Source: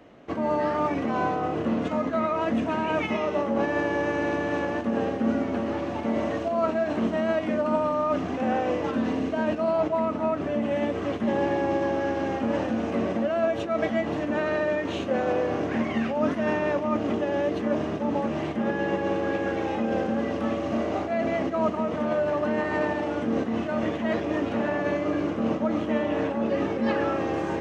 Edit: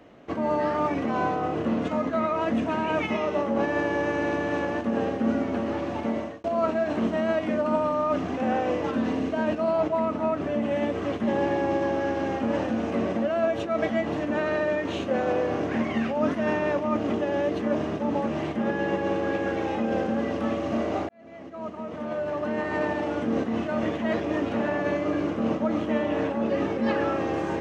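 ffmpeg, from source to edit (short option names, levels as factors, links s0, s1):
-filter_complex "[0:a]asplit=3[s0][s1][s2];[s0]atrim=end=6.44,asetpts=PTS-STARTPTS,afade=t=out:st=6.06:d=0.38[s3];[s1]atrim=start=6.44:end=21.09,asetpts=PTS-STARTPTS,afade=t=in:d=0.004:c=hsin,afade=t=out:st=14.646:d=0.004:c=hsin[s4];[s2]atrim=start=21.09,asetpts=PTS-STARTPTS,afade=t=in:d=1.92[s5];[s3][s4][s5]concat=n=3:v=0:a=1"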